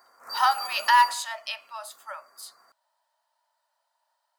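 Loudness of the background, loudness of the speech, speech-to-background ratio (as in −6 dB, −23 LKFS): −34.5 LKFS, −23.5 LKFS, 11.0 dB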